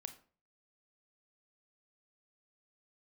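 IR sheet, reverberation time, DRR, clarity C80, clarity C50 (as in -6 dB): 0.40 s, 8.0 dB, 17.0 dB, 12.5 dB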